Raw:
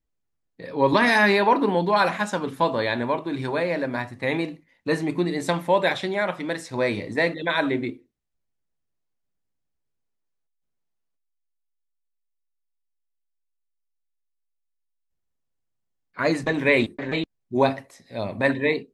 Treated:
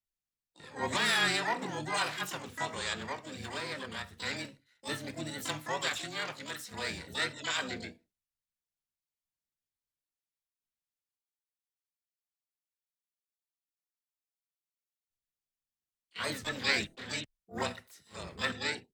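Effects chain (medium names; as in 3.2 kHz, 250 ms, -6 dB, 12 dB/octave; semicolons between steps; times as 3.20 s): amplifier tone stack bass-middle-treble 5-5-5; frequency shift -22 Hz; short-mantissa float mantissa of 8-bit; harmony voices -5 st -7 dB, +7 st -12 dB, +12 st -3 dB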